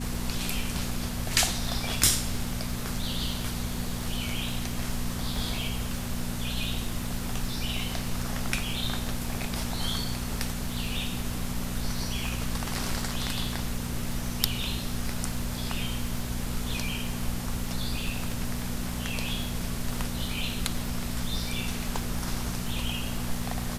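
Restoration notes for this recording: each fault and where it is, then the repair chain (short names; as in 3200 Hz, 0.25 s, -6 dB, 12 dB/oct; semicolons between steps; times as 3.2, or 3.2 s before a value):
crackle 34/s -34 dBFS
hum 60 Hz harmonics 4 -35 dBFS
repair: de-click; de-hum 60 Hz, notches 4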